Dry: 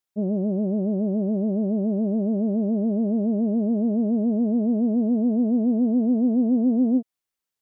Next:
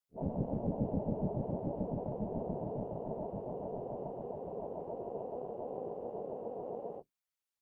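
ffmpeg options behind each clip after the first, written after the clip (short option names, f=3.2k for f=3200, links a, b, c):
-af "afftfilt=real='re*(1-between(b*sr/4096,200,430))':imag='im*(1-between(b*sr/4096,200,430))':win_size=4096:overlap=0.75,afftfilt=real='hypot(re,im)*cos(2*PI*random(0))':imag='hypot(re,im)*sin(2*PI*random(1))':win_size=512:overlap=0.75,tremolo=f=250:d=0.75,volume=2dB"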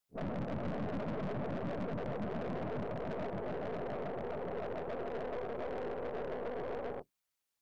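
-af "aeval=exprs='(tanh(158*val(0)+0.65)-tanh(0.65))/158':c=same,volume=8.5dB"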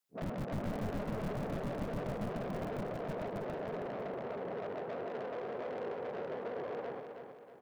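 -filter_complex "[0:a]acrossover=split=100[a][b];[a]acrusher=bits=6:mix=0:aa=0.000001[c];[c][b]amix=inputs=2:normalize=0,aecho=1:1:319|638|957|1276|1595:0.447|0.192|0.0826|0.0355|0.0153,volume=-1dB"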